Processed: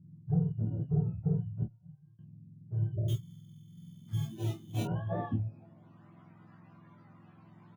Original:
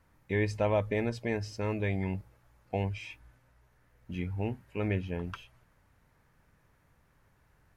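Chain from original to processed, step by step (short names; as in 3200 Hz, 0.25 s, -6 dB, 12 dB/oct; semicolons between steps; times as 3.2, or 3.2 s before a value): spectrum mirrored in octaves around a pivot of 550 Hz; 1.63–2.19 gate -25 dBFS, range -34 dB; bell 480 Hz -11 dB 0.72 oct; in parallel at +1 dB: compressor, threshold -43 dBFS, peak gain reduction 16 dB; on the sum: limiter -25.5 dBFS, peak gain reduction 8.5 dB; low-pass sweep 150 Hz -> 1100 Hz, 3.66–6.15; added harmonics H 5 -18 dB, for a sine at -20.5 dBFS; 3.08–4.83 sample-rate reducer 3300 Hz, jitter 0%; doubler 18 ms -5 dB; early reflections 12 ms -5.5 dB, 27 ms -4.5 dB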